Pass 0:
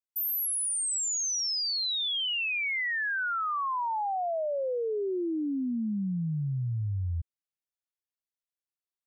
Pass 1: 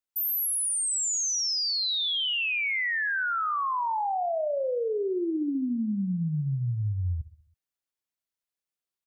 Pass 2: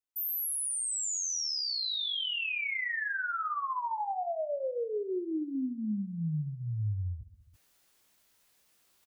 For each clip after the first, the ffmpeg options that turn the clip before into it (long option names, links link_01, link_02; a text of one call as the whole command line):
ffmpeg -i in.wav -af "aecho=1:1:65|130|195|260|325:0.2|0.108|0.0582|0.0314|0.017,volume=2dB" out.wav
ffmpeg -i in.wav -filter_complex "[0:a]areverse,acompressor=mode=upward:threshold=-40dB:ratio=2.5,areverse,asplit=2[link_01][link_02];[link_02]adelay=19,volume=-5.5dB[link_03];[link_01][link_03]amix=inputs=2:normalize=0,volume=-6.5dB" out.wav